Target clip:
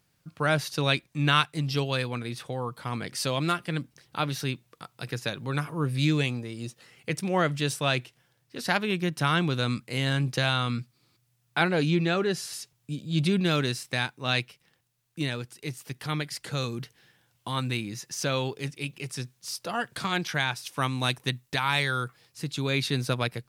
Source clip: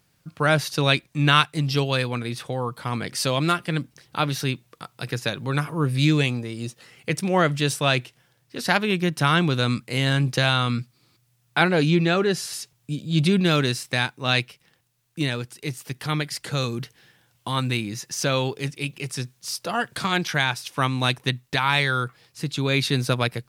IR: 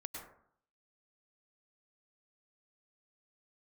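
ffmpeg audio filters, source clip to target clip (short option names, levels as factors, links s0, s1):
-filter_complex "[0:a]asplit=3[s0][s1][s2];[s0]afade=t=out:st=20.62:d=0.02[s3];[s1]adynamicequalizer=threshold=0.0158:dfrequency=5400:dqfactor=0.7:tfrequency=5400:tqfactor=0.7:attack=5:release=100:ratio=0.375:range=2.5:mode=boostabove:tftype=highshelf,afade=t=in:st=20.62:d=0.02,afade=t=out:st=22.7:d=0.02[s4];[s2]afade=t=in:st=22.7:d=0.02[s5];[s3][s4][s5]amix=inputs=3:normalize=0,volume=0.562"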